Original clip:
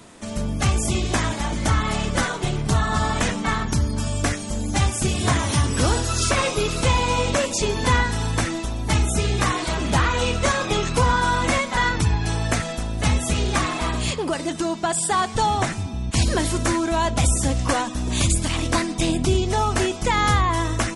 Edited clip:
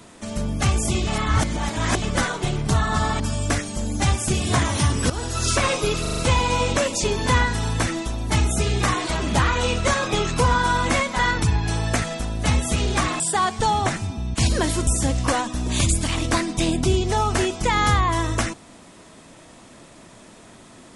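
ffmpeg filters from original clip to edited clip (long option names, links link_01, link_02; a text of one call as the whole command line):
ffmpeg -i in.wav -filter_complex "[0:a]asplit=11[link_01][link_02][link_03][link_04][link_05][link_06][link_07][link_08][link_09][link_10][link_11];[link_01]atrim=end=1.072[link_12];[link_02]atrim=start=1.068:end=2.022,asetpts=PTS-STARTPTS,areverse[link_13];[link_03]atrim=start=2.018:end=3.202[link_14];[link_04]atrim=start=3.938:end=5.84,asetpts=PTS-STARTPTS,afade=type=out:start_time=1.898:duration=0.004:curve=hsin:silence=0.199526[link_15];[link_05]atrim=start=5.84:end=6.792,asetpts=PTS-STARTPTS,afade=type=in:duration=0.34:silence=0.199526[link_16];[link_06]atrim=start=6.748:end=6.792[link_17];[link_07]atrim=start=6.748:end=6.792[link_18];[link_08]atrim=start=6.748:end=6.792[link_19];[link_09]atrim=start=6.748:end=13.782[link_20];[link_10]atrim=start=14.958:end=16.632[link_21];[link_11]atrim=start=17.278[link_22];[link_12][link_13]acrossfade=duration=0.004:curve1=hsin:curve2=hsin[link_23];[link_23][link_14]acrossfade=duration=0.004:curve1=hsin:curve2=hsin[link_24];[link_15][link_16]concat=n=2:v=0:a=1[link_25];[link_24][link_25]acrossfade=duration=0.004:curve1=hsin:curve2=hsin[link_26];[link_26][link_17]acrossfade=duration=0.004:curve1=hsin:curve2=hsin[link_27];[link_27][link_18]acrossfade=duration=0.004:curve1=hsin:curve2=hsin[link_28];[link_28][link_19]acrossfade=duration=0.004:curve1=hsin:curve2=hsin[link_29];[link_29][link_20]acrossfade=duration=0.004:curve1=hsin:curve2=hsin[link_30];[link_30][link_21]acrossfade=duration=0.004:curve1=hsin:curve2=hsin[link_31];[link_31][link_22]acrossfade=duration=0.004:curve1=hsin:curve2=hsin" out.wav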